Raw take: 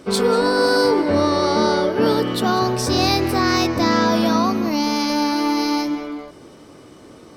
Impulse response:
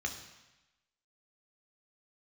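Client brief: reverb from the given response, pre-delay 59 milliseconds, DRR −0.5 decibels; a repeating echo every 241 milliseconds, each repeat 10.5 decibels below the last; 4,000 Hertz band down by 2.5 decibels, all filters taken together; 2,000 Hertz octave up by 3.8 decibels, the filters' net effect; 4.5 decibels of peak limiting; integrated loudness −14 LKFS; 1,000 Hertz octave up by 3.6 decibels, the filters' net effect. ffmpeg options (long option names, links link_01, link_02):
-filter_complex "[0:a]equalizer=frequency=1000:width_type=o:gain=3.5,equalizer=frequency=2000:width_type=o:gain=4.5,equalizer=frequency=4000:width_type=o:gain=-4,alimiter=limit=-8.5dB:level=0:latency=1,aecho=1:1:241|482|723:0.299|0.0896|0.0269,asplit=2[link_01][link_02];[1:a]atrim=start_sample=2205,adelay=59[link_03];[link_02][link_03]afir=irnorm=-1:irlink=0,volume=-2.5dB[link_04];[link_01][link_04]amix=inputs=2:normalize=0,volume=1.5dB"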